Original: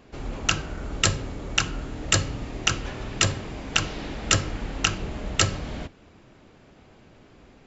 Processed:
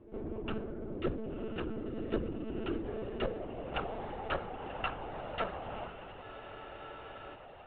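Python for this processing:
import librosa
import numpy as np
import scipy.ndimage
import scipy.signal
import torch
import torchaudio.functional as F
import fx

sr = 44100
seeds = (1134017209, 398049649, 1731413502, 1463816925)

p1 = fx.low_shelf(x, sr, hz=120.0, db=8.5)
p2 = fx.rider(p1, sr, range_db=4, speed_s=0.5)
p3 = p1 + (p2 * librosa.db_to_amplitude(3.0))
p4 = fx.filter_sweep_bandpass(p3, sr, from_hz=360.0, to_hz=770.0, start_s=2.78, end_s=4.07, q=2.5)
p5 = p4 + fx.echo_diffused(p4, sr, ms=1019, feedback_pct=53, wet_db=-9, dry=0)
p6 = fx.lpc_monotone(p5, sr, seeds[0], pitch_hz=220.0, order=16)
p7 = fx.spec_freeze(p6, sr, seeds[1], at_s=6.25, hold_s=1.11)
y = p7 * librosa.db_to_amplitude(-6.5)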